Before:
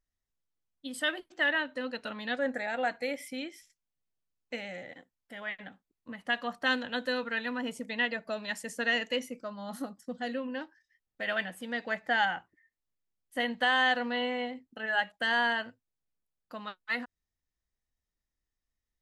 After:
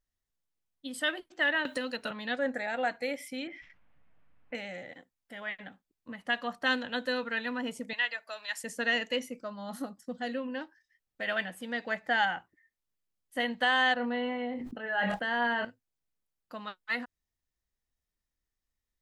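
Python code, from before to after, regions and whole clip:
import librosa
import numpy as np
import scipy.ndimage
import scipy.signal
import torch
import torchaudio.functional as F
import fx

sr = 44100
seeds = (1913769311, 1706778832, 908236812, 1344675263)

y = fx.chain(x, sr, fx.high_shelf(hz=6400.0, db=9.5),
    fx.band_squash(depth_pct=100), at=(1.65, 2.11))
y = fx.chain(y, sr, fx.lowpass(hz=2300.0, slope=24),
    fx.peak_eq(hz=380.0, db=-12.5, octaves=0.23),
    fx.env_flatten(amount_pct=50), at=(3.47, 4.55))
y = fx.chain(y, sr, fx.highpass(hz=970.0, slope=12),
    fx.high_shelf(hz=8300.0, db=4.5), at=(7.93, 8.64))
y = fx.chain(y, sr, fx.lowpass(hz=1400.0, slope=6),
    fx.doubler(ms=25.0, db=-9.5),
    fx.sustainer(db_per_s=24.0), at=(13.94, 15.65))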